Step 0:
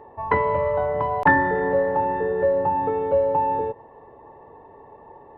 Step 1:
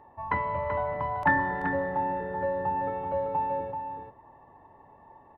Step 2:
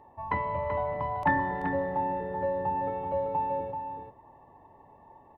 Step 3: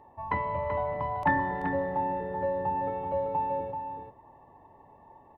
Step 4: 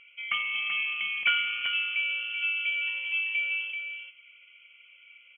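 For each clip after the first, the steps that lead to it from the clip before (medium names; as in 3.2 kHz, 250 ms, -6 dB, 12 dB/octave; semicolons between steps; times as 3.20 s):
peaking EQ 440 Hz -13 dB 0.49 oct; on a send: delay 384 ms -6.5 dB; on the sum: trim -6 dB
peaking EQ 1.5 kHz -9 dB 0.51 oct
no audible change
frequency inversion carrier 3.2 kHz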